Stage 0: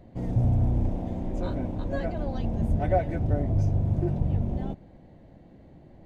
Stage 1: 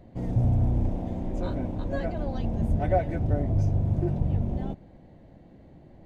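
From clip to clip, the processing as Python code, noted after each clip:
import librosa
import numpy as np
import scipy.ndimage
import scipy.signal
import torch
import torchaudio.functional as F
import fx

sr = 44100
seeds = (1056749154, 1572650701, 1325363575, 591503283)

y = x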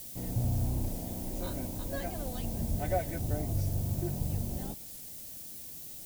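y = fx.dmg_noise_colour(x, sr, seeds[0], colour='blue', level_db=-49.0)
y = fx.high_shelf(y, sr, hz=2500.0, db=12.0)
y = fx.record_warp(y, sr, rpm=45.0, depth_cents=100.0)
y = y * librosa.db_to_amplitude(-7.5)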